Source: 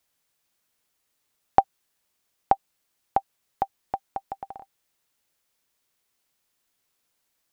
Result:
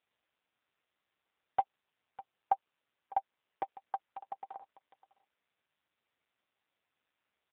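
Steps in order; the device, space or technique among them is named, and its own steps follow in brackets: satellite phone (BPF 390–3000 Hz; echo 0.604 s -22 dB; gain -1.5 dB; AMR-NB 5.9 kbps 8000 Hz)

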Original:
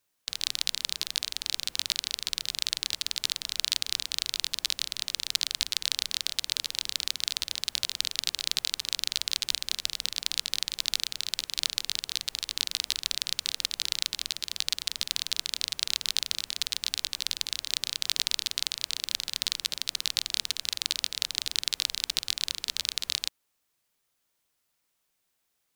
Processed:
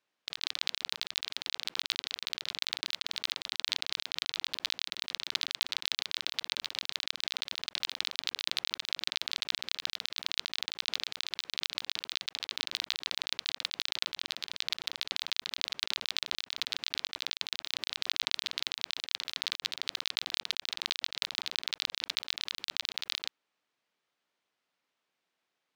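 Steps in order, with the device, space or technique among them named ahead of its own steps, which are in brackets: early digital voice recorder (BPF 200–3600 Hz; block floating point 5-bit)

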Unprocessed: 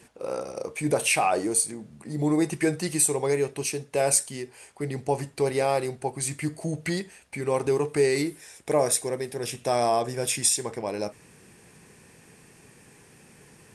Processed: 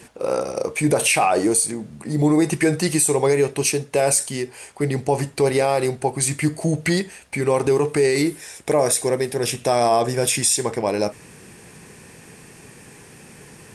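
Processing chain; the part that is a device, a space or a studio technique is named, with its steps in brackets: clipper into limiter (hard clip -10.5 dBFS, distortion -42 dB; limiter -17.5 dBFS, peak gain reduction 7 dB); gain +9 dB

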